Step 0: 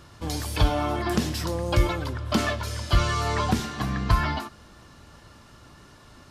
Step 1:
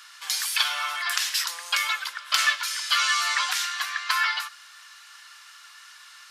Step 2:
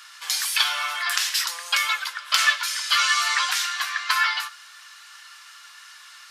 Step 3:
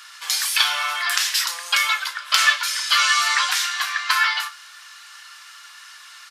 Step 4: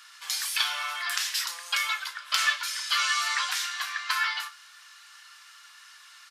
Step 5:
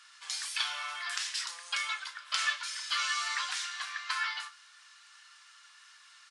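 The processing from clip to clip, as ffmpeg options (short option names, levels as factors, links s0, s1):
-af "highpass=f=1400:w=0.5412,highpass=f=1400:w=1.3066,volume=2.82"
-af "flanger=delay=7.3:depth=4.5:regen=-58:speed=0.57:shape=sinusoidal,volume=2.11"
-filter_complex "[0:a]asplit=2[s0][s1];[s1]adelay=34,volume=0.251[s2];[s0][s2]amix=inputs=2:normalize=0,volume=1.33"
-af "highpass=f=380:p=1,volume=0.398"
-af "volume=0.501" -ar 22050 -c:a libvorbis -b:a 64k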